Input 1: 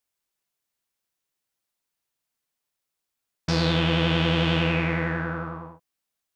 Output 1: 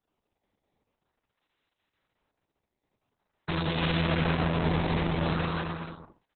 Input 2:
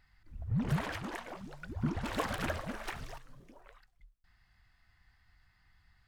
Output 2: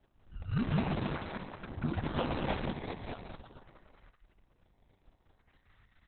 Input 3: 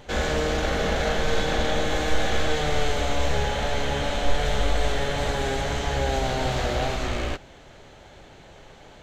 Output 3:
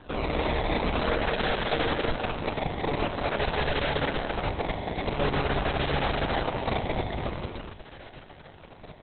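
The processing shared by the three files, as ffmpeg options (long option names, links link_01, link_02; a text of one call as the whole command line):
ffmpeg -i in.wav -filter_complex "[0:a]bandreject=frequency=60:width_type=h:width=6,bandreject=frequency=120:width_type=h:width=6,bandreject=frequency=180:width_type=h:width=6,acrossover=split=190[link_01][link_02];[link_01]acompressor=threshold=-25dB:ratio=8[link_03];[link_03][link_02]amix=inputs=2:normalize=0,acrusher=samples=18:mix=1:aa=0.000001:lfo=1:lforange=28.8:lforate=0.47,volume=26.5dB,asoftclip=hard,volume=-26.5dB,asplit=2[link_04][link_05];[link_05]adelay=21,volume=-11.5dB[link_06];[link_04][link_06]amix=inputs=2:normalize=0,aecho=1:1:190|304|372.4|413.4|438.1:0.631|0.398|0.251|0.158|0.1,aresample=11025,aresample=44100,volume=1.5dB" -ar 48000 -c:a libopus -b:a 6k out.opus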